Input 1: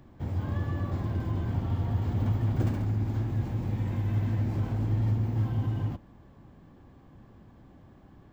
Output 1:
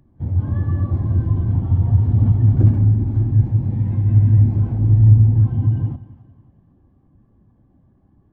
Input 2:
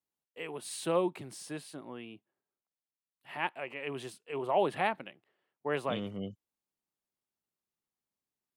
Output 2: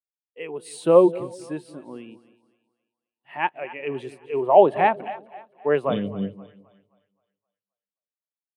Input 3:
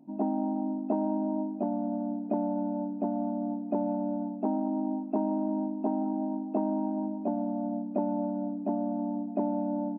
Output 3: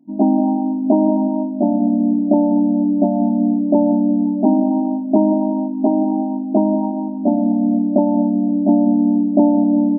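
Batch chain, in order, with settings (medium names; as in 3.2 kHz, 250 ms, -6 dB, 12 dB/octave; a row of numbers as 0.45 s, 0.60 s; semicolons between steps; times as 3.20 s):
two-band feedback delay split 600 Hz, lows 184 ms, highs 262 ms, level -11.5 dB; spectral contrast expander 1.5:1; peak normalisation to -2 dBFS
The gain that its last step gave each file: +13.0 dB, +13.0 dB, +14.0 dB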